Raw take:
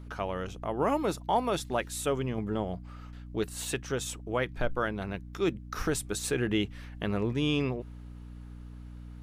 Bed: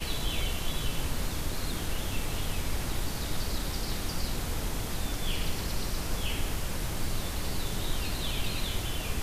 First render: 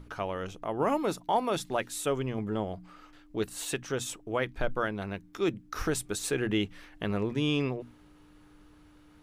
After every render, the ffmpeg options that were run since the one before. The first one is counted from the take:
-af "bandreject=f=60:t=h:w=6,bandreject=f=120:t=h:w=6,bandreject=f=180:t=h:w=6,bandreject=f=240:t=h:w=6"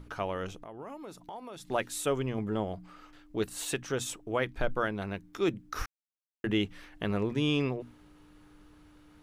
-filter_complex "[0:a]asettb=1/sr,asplit=3[a][b][c];[a]atrim=end=0.614[d];[b]atrim=start=0.61:end=1.68,asetpts=PTS-STARTPTS,afade=t=in:d=0.004:c=qsin,afade=t=out:st=1.066:d=0.004:c=qsin,acompressor=threshold=-45dB:ratio=3:attack=3.2:release=140:knee=1:detection=peak[e];[c]atrim=start=1.676[f];[d][e]acrossfade=d=0.004:c1=hsin:c2=qsin[g];[g][f]acrossfade=d=0.004:c1=qsin:c2=hsin,asplit=3[h][i][j];[h]atrim=end=5.86,asetpts=PTS-STARTPTS,afade=t=out:st=5.856:d=0.004:c=hsin[k];[i]atrim=start=5.86:end=6.44,asetpts=PTS-STARTPTS,volume=0[l];[j]atrim=start=6.44,asetpts=PTS-STARTPTS,afade=t=in:d=0.004:c=hsin[m];[k][l][m]concat=n=3:v=0:a=1"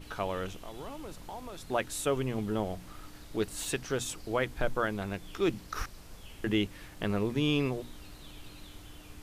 -filter_complex "[1:a]volume=-17.5dB[a];[0:a][a]amix=inputs=2:normalize=0"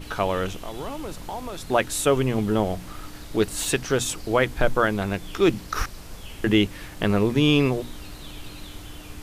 -af "volume=9.5dB"

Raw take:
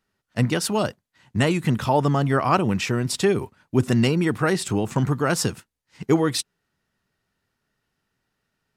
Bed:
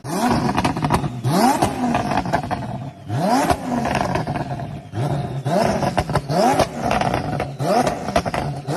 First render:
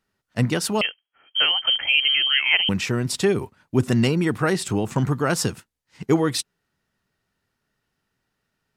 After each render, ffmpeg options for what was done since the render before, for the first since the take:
-filter_complex "[0:a]asettb=1/sr,asplit=3[a][b][c];[a]atrim=end=0.814[d];[b]atrim=start=0.81:end=2.69,asetpts=PTS-STARTPTS,afade=t=in:d=0.004:c=qsin,afade=t=out:st=1.876:d=0.004:c=qsin,lowpass=f=2.8k:t=q:w=0.5098,lowpass=f=2.8k:t=q:w=0.6013,lowpass=f=2.8k:t=q:w=0.9,lowpass=f=2.8k:t=q:w=2.563,afreqshift=-3300[e];[c]atrim=start=2.686[f];[d][e]acrossfade=d=0.004:c1=hsin:c2=qsin[g];[g][f]acrossfade=d=0.004:c1=qsin:c2=hsin"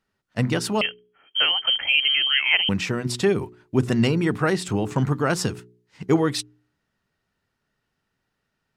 -af "highshelf=f=8.3k:g=-8.5,bandreject=f=60.42:t=h:w=4,bandreject=f=120.84:t=h:w=4,bandreject=f=181.26:t=h:w=4,bandreject=f=241.68:t=h:w=4,bandreject=f=302.1:t=h:w=4,bandreject=f=362.52:t=h:w=4,bandreject=f=422.94:t=h:w=4"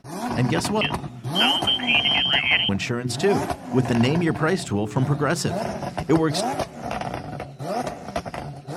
-filter_complex "[1:a]volume=-9.5dB[a];[0:a][a]amix=inputs=2:normalize=0"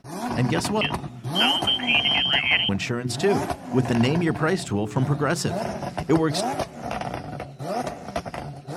-af "volume=-1dB"

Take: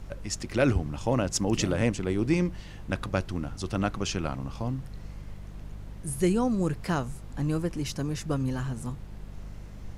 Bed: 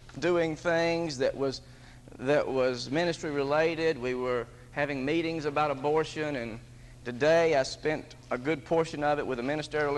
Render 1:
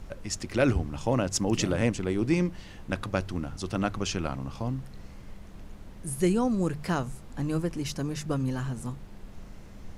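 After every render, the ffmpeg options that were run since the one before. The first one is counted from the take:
-af "bandreject=f=50:t=h:w=4,bandreject=f=100:t=h:w=4,bandreject=f=150:t=h:w=4"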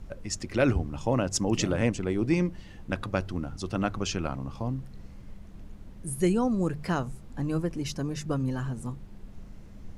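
-af "afftdn=nr=6:nf=-46"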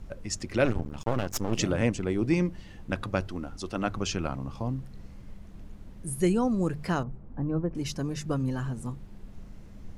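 -filter_complex "[0:a]asettb=1/sr,asplit=3[a][b][c];[a]atrim=end=0.654[d];[b]atrim=start=0.65:end=1.59,asetpts=PTS-STARTPTS,afade=t=in:d=0.004:c=qsin,afade=t=out:st=0.936:d=0.004:c=qsin,aeval=exprs='max(val(0),0)':c=same[e];[c]atrim=start=1.586[f];[d][e]acrossfade=d=0.004:c1=hsin:c2=qsin[g];[g][f]acrossfade=d=0.004:c1=qsin:c2=hsin,asettb=1/sr,asplit=3[h][i][j];[h]atrim=end=3.274[k];[i]atrim=start=3.27:end=3.87,asetpts=PTS-STARTPTS,afade=t=in:d=0.004:c=qsin,afade=t=out:st=0.596:d=0.004:c=qsin,equalizer=f=120:w=1.5:g=-11.5[l];[j]atrim=start=3.866[m];[k][l]acrossfade=d=0.004:c1=hsin:c2=qsin[n];[n][m]acrossfade=d=0.004:c1=qsin:c2=hsin,asettb=1/sr,asplit=3[o][p][q];[o]atrim=end=7.034[r];[p]atrim=start=7.03:end=7.75,asetpts=PTS-STARTPTS,afade=t=in:d=0.004:c=qsin,afade=t=out:st=0.716:d=0.004:c=qsin,lowpass=1.1k[s];[q]atrim=start=7.746[t];[r][s]acrossfade=d=0.004:c1=hsin:c2=qsin[u];[u][t]acrossfade=d=0.004:c1=qsin:c2=hsin"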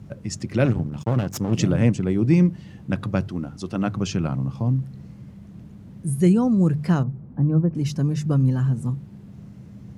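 -af "highpass=91,equalizer=f=140:w=0.8:g=13.5"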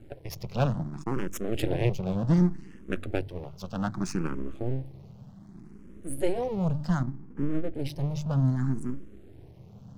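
-filter_complex "[0:a]aeval=exprs='max(val(0),0)':c=same,asplit=2[a][b];[b]afreqshift=0.65[c];[a][c]amix=inputs=2:normalize=1"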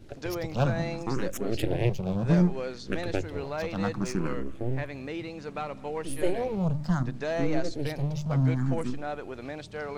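-filter_complex "[1:a]volume=-7.5dB[a];[0:a][a]amix=inputs=2:normalize=0"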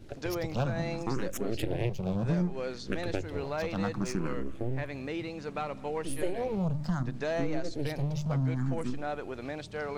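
-af "acompressor=threshold=-27dB:ratio=3"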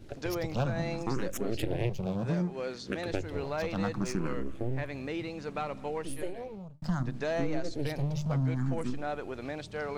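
-filter_complex "[0:a]asettb=1/sr,asplit=3[a][b][c];[a]atrim=end=2.064[d];[b]atrim=start=2.06:end=3.12,asetpts=PTS-STARTPTS,afade=t=in:d=0.004:c=qsin,afade=t=out:st=1.056:d=0.004:c=qsin,highpass=f=130:p=1[e];[c]atrim=start=3.116[f];[d][e]acrossfade=d=0.004:c1=hsin:c2=qsin[g];[g][f]acrossfade=d=0.004:c1=qsin:c2=hsin,asplit=2[h][i];[h]atrim=end=6.82,asetpts=PTS-STARTPTS,afade=t=out:st=5.83:d=0.99[j];[i]atrim=start=6.82,asetpts=PTS-STARTPTS,afade=t=in:d=0.004:c=hsin[k];[j][k]concat=n=2:v=0:a=1"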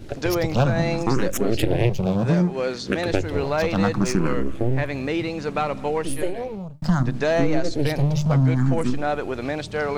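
-af "volume=11dB"

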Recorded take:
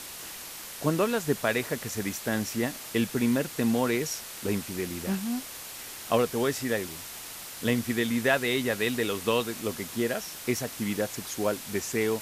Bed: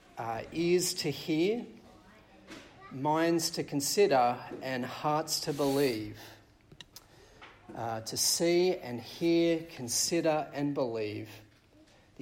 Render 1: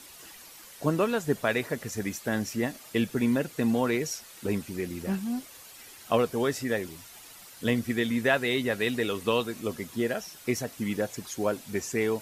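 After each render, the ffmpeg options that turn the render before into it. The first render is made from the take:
-af "afftdn=nr=10:nf=-41"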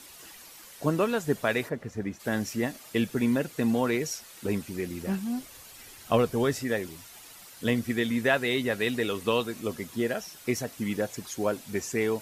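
-filter_complex "[0:a]asplit=3[a][b][c];[a]afade=t=out:st=1.68:d=0.02[d];[b]lowpass=f=1.1k:p=1,afade=t=in:st=1.68:d=0.02,afade=t=out:st=2.19:d=0.02[e];[c]afade=t=in:st=2.19:d=0.02[f];[d][e][f]amix=inputs=3:normalize=0,asettb=1/sr,asplit=3[g][h][i];[g]atrim=end=5.404[j];[h]atrim=start=5.4:end=6.6,asetpts=PTS-STARTPTS,afade=t=in:d=0.004:c=qsin,afade=t=out:st=1.196:d=0.004:c=qsin,lowshelf=f=130:g=10[k];[i]atrim=start=6.596[l];[j][k]acrossfade=d=0.004:c1=hsin:c2=qsin[m];[m][l]acrossfade=d=0.004:c1=qsin:c2=hsin"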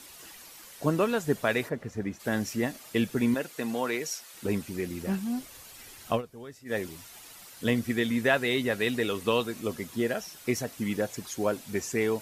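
-filter_complex "[0:a]asettb=1/sr,asplit=3[a][b][c];[a]atrim=end=3.344[d];[b]atrim=start=3.34:end=4.34,asetpts=PTS-STARTPTS,afade=t=in:d=0.004:c=qsin,afade=t=out:st=0.996:d=0.004:c=qsin,highpass=f=500:p=1[e];[c]atrim=start=4.336[f];[d][e]acrossfade=d=0.004:c1=hsin:c2=qsin[g];[g][f]acrossfade=d=0.004:c1=qsin:c2=hsin,asplit=3[h][i][j];[h]atrim=end=6.22,asetpts=PTS-STARTPTS,afade=t=out:st=6.1:d=0.12:silence=0.125893[k];[i]atrim=start=6.22:end=6.65,asetpts=PTS-STARTPTS,volume=-18dB[l];[j]atrim=start=6.65,asetpts=PTS-STARTPTS,afade=t=in:d=0.12:silence=0.125893[m];[k][l][m]concat=n=3:v=0:a=1"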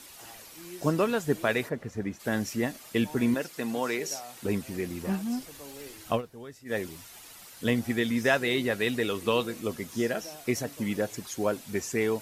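-filter_complex "[1:a]volume=-17.5dB[a];[0:a][a]amix=inputs=2:normalize=0"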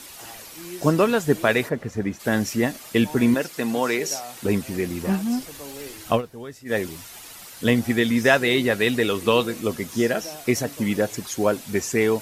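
-af "volume=7dB"

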